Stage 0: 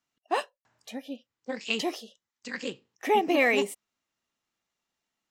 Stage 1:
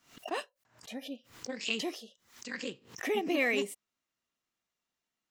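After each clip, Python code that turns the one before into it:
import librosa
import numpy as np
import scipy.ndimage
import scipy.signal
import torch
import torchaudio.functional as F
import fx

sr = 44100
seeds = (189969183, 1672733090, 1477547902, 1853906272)

y = fx.notch(x, sr, hz=850.0, q=17.0)
y = fx.dynamic_eq(y, sr, hz=830.0, q=0.94, threshold_db=-38.0, ratio=4.0, max_db=-6)
y = fx.pre_swell(y, sr, db_per_s=130.0)
y = y * librosa.db_to_amplitude(-4.0)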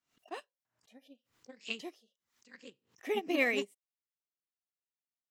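y = fx.upward_expand(x, sr, threshold_db=-41.0, expansion=2.5)
y = y * librosa.db_to_amplitude(1.5)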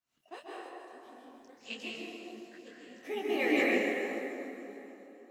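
y = fx.echo_wet_highpass(x, sr, ms=287, feedback_pct=55, hz=5200.0, wet_db=-6.5)
y = fx.rev_plate(y, sr, seeds[0], rt60_s=3.6, hf_ratio=0.35, predelay_ms=120, drr_db=-6.0)
y = fx.detune_double(y, sr, cents=58)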